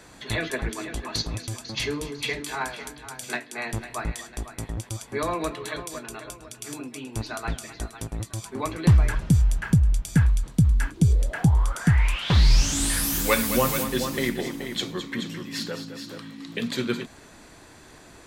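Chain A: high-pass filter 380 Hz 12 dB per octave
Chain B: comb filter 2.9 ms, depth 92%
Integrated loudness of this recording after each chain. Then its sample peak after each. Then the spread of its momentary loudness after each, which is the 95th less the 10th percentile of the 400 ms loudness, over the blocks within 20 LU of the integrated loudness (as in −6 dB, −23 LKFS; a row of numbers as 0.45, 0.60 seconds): −31.0, −23.5 LKFS; −7.0, −4.5 dBFS; 16, 14 LU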